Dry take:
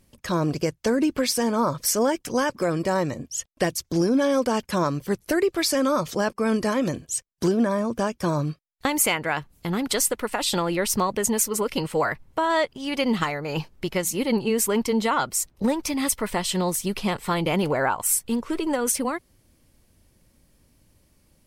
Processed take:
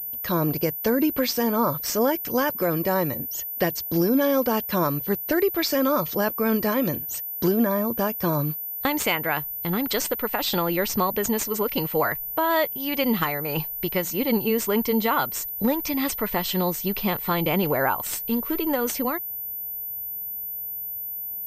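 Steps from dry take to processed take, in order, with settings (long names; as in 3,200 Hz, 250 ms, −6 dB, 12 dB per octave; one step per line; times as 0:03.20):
noise in a band 230–830 Hz −63 dBFS
switching amplifier with a slow clock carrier 14,000 Hz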